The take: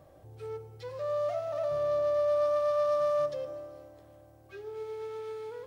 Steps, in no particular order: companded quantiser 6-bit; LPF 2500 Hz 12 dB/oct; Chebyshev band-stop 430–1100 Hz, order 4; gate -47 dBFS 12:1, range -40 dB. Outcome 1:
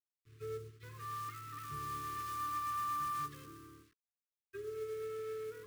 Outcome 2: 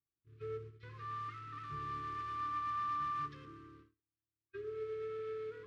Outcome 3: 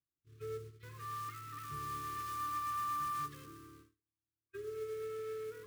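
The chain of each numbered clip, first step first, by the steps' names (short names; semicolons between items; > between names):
gate > LPF > companded quantiser > Chebyshev band-stop; companded quantiser > LPF > gate > Chebyshev band-stop; LPF > companded quantiser > gate > Chebyshev band-stop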